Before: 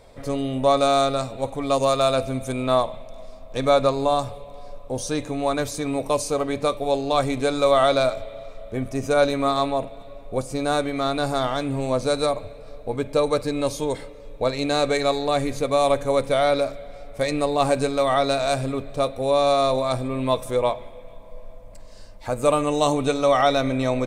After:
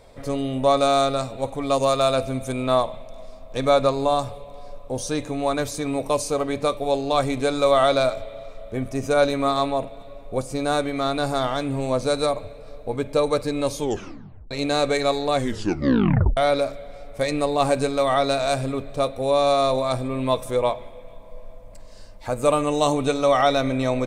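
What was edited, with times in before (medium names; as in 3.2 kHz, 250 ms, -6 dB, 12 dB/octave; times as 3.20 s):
13.81 s: tape stop 0.70 s
15.35 s: tape stop 1.02 s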